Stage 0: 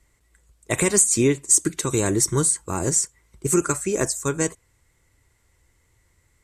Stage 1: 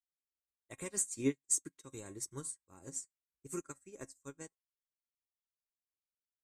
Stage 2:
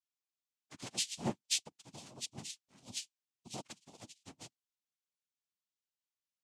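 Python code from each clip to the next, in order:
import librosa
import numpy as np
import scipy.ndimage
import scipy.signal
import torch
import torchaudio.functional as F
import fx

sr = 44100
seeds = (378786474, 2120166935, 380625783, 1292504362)

y1 = fx.comb_fb(x, sr, f0_hz=270.0, decay_s=0.23, harmonics='all', damping=0.0, mix_pct=70)
y1 = fx.upward_expand(y1, sr, threshold_db=-48.0, expansion=2.5)
y1 = y1 * librosa.db_to_amplitude(-5.0)
y2 = fx.peak_eq(y1, sr, hz=690.0, db=-12.0, octaves=2.5)
y2 = fx.noise_vocoder(y2, sr, seeds[0], bands=4)
y2 = y2 * librosa.db_to_amplitude(2.0)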